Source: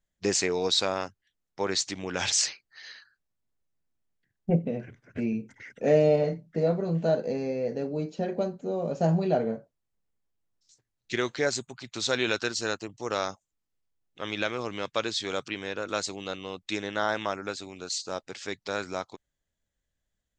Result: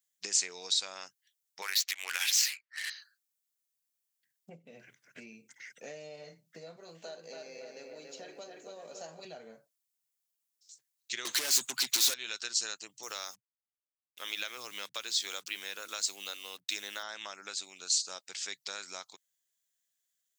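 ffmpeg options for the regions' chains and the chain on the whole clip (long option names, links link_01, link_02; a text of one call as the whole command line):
ffmpeg -i in.wav -filter_complex "[0:a]asettb=1/sr,asplit=3[link_01][link_02][link_03];[link_01]atrim=end=1.624[link_04];[link_02]atrim=start=1.62:end=2.9,asetpts=PTS-STARTPTS,afade=type=in:duration=0.004:curve=qsin,afade=type=out:start_time=1.276:duration=0.004:curve=qsin,highpass=570,equalizer=frequency=2100:width=0.64:gain=15,adynamicsmooth=sensitivity=5:basefreq=1600[link_05];[link_03]atrim=start=2.896[link_06];[link_04][link_05]acrossfade=duration=0.004:curve1=hsin:curve2=qsin[link_07];[link_07][link_06]acrossfade=duration=0.004:curve1=qsin:curve2=hsin,asettb=1/sr,asplit=3[link_08][link_09][link_10];[link_08]atrim=end=6.764[link_11];[link_09]atrim=start=6.76:end=9.25,asetpts=PTS-STARTPTS,afade=type=in:duration=0.004:curve=qsin,afade=type=out:start_time=2.486:duration=0.004:curve=qsin,highpass=290,asplit=2[link_12][link_13];[link_13]adelay=281,lowpass=frequency=3800:poles=1,volume=-3.5dB,asplit=2[link_14][link_15];[link_15]adelay=281,lowpass=frequency=3800:poles=1,volume=0.5,asplit=2[link_16][link_17];[link_17]adelay=281,lowpass=frequency=3800:poles=1,volume=0.5,asplit=2[link_18][link_19];[link_19]adelay=281,lowpass=frequency=3800:poles=1,volume=0.5,asplit=2[link_20][link_21];[link_21]adelay=281,lowpass=frequency=3800:poles=1,volume=0.5,asplit=2[link_22][link_23];[link_23]adelay=281,lowpass=frequency=3800:poles=1,volume=0.5,asplit=2[link_24][link_25];[link_25]adelay=281,lowpass=frequency=3800:poles=1,volume=0.5[link_26];[link_12][link_14][link_16][link_18][link_20][link_22][link_24][link_26]amix=inputs=8:normalize=0,atrim=end_sample=109809[link_27];[link_10]atrim=start=9.246[link_28];[link_11][link_27]acrossfade=duration=0.004:curve1=hsin:curve2=qsin[link_29];[link_29][link_28]acrossfade=duration=0.004:curve1=qsin:curve2=hsin,asettb=1/sr,asplit=3[link_30][link_31][link_32];[link_30]atrim=end=11.254[link_33];[link_31]atrim=start=11.25:end=12.14,asetpts=PTS-STARTPTS,afade=type=in:duration=0.004:curve=qsin,afade=type=out:start_time=0.886:duration=0.004:curve=qsin,equalizer=frequency=280:width_type=o:width=0.96:gain=12.5,asplit=2[link_34][link_35];[link_35]highpass=frequency=720:poles=1,volume=38dB,asoftclip=type=tanh:threshold=-8.5dB[link_36];[link_34][link_36]amix=inputs=2:normalize=0,lowpass=frequency=6900:poles=1,volume=-6dB[link_37];[link_32]atrim=start=12.136[link_38];[link_33][link_37]acrossfade=duration=0.004:curve1=hsin:curve2=qsin[link_39];[link_39][link_38]acrossfade=duration=0.004:curve1=qsin:curve2=hsin,asettb=1/sr,asplit=3[link_40][link_41][link_42];[link_40]atrim=end=13.034[link_43];[link_41]atrim=start=13.03:end=17.03,asetpts=PTS-STARTPTS,afade=type=in:duration=0.004:curve=qsin,afade=type=out:start_time=3.996:duration=0.004:curve=qsin,acrusher=bits=8:mix=0:aa=0.5,acrossover=split=170[link_44][link_45];[link_44]adelay=40[link_46];[link_46][link_45]amix=inputs=2:normalize=0,atrim=end_sample=176400[link_47];[link_42]atrim=start=17.026[link_48];[link_43][link_47]acrossfade=duration=0.004:curve1=hsin:curve2=qsin[link_49];[link_49][link_48]acrossfade=duration=0.004:curve1=qsin:curve2=hsin,lowshelf=frequency=100:width_type=q:width=3:gain=-10,acompressor=threshold=-29dB:ratio=6,aderivative,volume=8dB" out.wav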